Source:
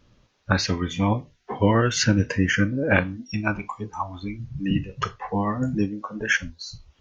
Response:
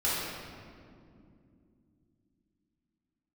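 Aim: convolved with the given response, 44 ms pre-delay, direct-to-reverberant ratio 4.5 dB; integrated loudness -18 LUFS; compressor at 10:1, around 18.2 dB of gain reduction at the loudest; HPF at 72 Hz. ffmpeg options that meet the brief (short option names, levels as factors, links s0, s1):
-filter_complex "[0:a]highpass=72,acompressor=threshold=0.0224:ratio=10,asplit=2[s0][s1];[1:a]atrim=start_sample=2205,adelay=44[s2];[s1][s2]afir=irnorm=-1:irlink=0,volume=0.178[s3];[s0][s3]amix=inputs=2:normalize=0,volume=8.41"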